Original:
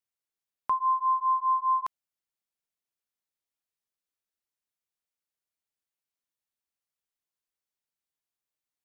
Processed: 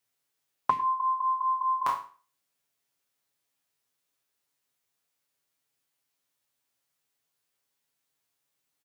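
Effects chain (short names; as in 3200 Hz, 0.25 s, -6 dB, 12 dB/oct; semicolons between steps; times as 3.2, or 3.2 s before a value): spectral trails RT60 0.40 s; HPF 59 Hz; comb 7.2 ms, depth 69%; gain +7.5 dB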